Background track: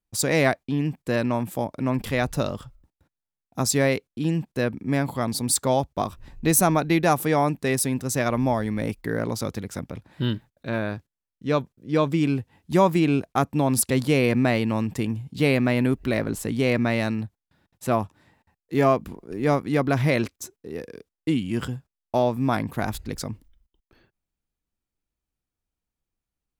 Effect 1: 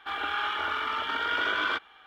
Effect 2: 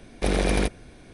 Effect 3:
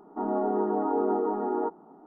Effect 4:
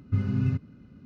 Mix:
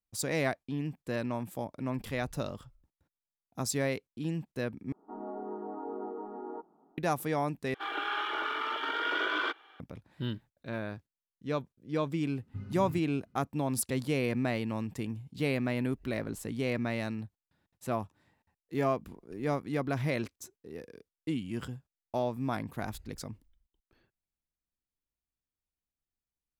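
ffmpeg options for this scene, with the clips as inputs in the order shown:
ffmpeg -i bed.wav -i cue0.wav -i cue1.wav -i cue2.wav -i cue3.wav -filter_complex "[0:a]volume=-10dB[link_01];[1:a]lowshelf=frequency=230:width_type=q:width=3:gain=-12[link_02];[link_01]asplit=3[link_03][link_04][link_05];[link_03]atrim=end=4.924[link_06];[3:a]atrim=end=2.06,asetpts=PTS-STARTPTS,volume=-13dB[link_07];[link_04]atrim=start=6.976:end=7.744[link_08];[link_02]atrim=end=2.06,asetpts=PTS-STARTPTS,volume=-4dB[link_09];[link_05]atrim=start=9.796[link_10];[4:a]atrim=end=1.05,asetpts=PTS-STARTPTS,volume=-15dB,afade=type=in:duration=0.004:curve=hsin,afade=type=out:start_time=1.046:duration=0.004:curve=hsin,adelay=12420[link_11];[link_06][link_07]acrossfade=duration=0.004:curve1=hsin:curve2=hsin[link_12];[link_12][link_08]acrossfade=duration=0.004:curve1=hsin:curve2=hsin[link_13];[link_13][link_09]acrossfade=duration=0.004:curve1=hsin:curve2=hsin[link_14];[link_14][link_10]acrossfade=duration=0.004:curve1=hsin:curve2=hsin[link_15];[link_15][link_11]amix=inputs=2:normalize=0" out.wav

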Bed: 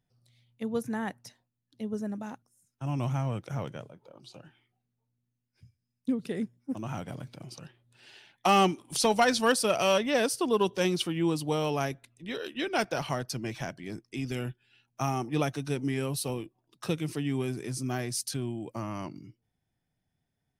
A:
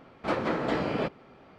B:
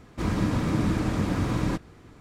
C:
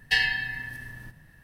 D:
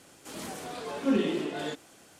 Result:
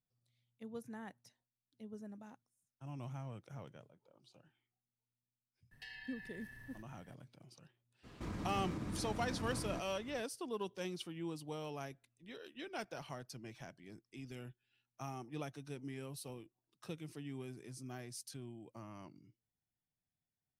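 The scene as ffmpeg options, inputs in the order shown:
ffmpeg -i bed.wav -i cue0.wav -i cue1.wav -i cue2.wav -filter_complex "[0:a]volume=-15.5dB[link_01];[3:a]acompressor=threshold=-37dB:ratio=5:attack=1.2:release=129:knee=1:detection=peak[link_02];[2:a]acompressor=threshold=-34dB:ratio=3:attack=0.19:release=209:knee=1:detection=peak[link_03];[link_02]atrim=end=1.43,asetpts=PTS-STARTPTS,volume=-12dB,afade=type=in:duration=0.004:curve=hsin,afade=type=out:start_time=1.426:duration=0.004:curve=hsin,adelay=5710[link_04];[link_03]atrim=end=2.2,asetpts=PTS-STARTPTS,volume=-6dB,afade=type=in:duration=0.02,afade=type=out:start_time=2.18:duration=0.02,adelay=8030[link_05];[link_01][link_04][link_05]amix=inputs=3:normalize=0" out.wav

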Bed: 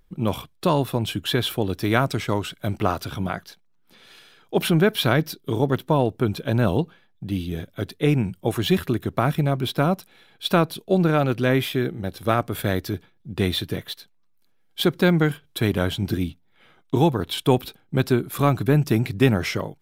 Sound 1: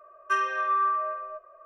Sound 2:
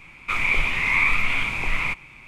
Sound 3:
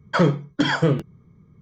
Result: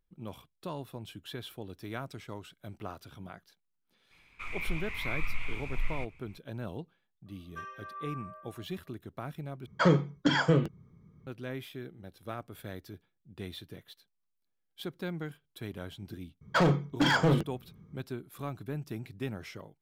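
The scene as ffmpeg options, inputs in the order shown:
ffmpeg -i bed.wav -i cue0.wav -i cue1.wav -i cue2.wav -filter_complex "[3:a]asplit=2[link_01][link_02];[0:a]volume=-19dB[link_03];[2:a]asubboost=boost=8.5:cutoff=120[link_04];[link_02]volume=17.5dB,asoftclip=hard,volume=-17.5dB[link_05];[link_03]asplit=2[link_06][link_07];[link_06]atrim=end=9.664[link_08];[link_01]atrim=end=1.61,asetpts=PTS-STARTPTS,volume=-5.5dB[link_09];[link_07]atrim=start=11.266[link_10];[link_04]atrim=end=2.27,asetpts=PTS-STARTPTS,volume=-17.5dB,afade=type=in:duration=0.004:curve=hsin,afade=type=out:start_time=2.266:duration=0.004:curve=hsin,adelay=4110[link_11];[1:a]atrim=end=1.65,asetpts=PTS-STARTPTS,volume=-18dB,afade=type=in:duration=0.004:curve=hsin,afade=type=out:start_time=1.646:duration=0.004:curve=hsin,adelay=7260[link_12];[link_05]atrim=end=1.61,asetpts=PTS-STARTPTS,volume=-2.5dB,afade=type=in:duration=0.004:curve=hsin,afade=type=out:start_time=1.606:duration=0.004:curve=hsin,adelay=16410[link_13];[link_08][link_09]acrossfade=duration=0.004:curve1=hsin:curve2=hsin[link_14];[link_14][link_10]acrossfade=duration=0.004:curve1=hsin:curve2=hsin[link_15];[link_15][link_11][link_12][link_13]amix=inputs=4:normalize=0" out.wav

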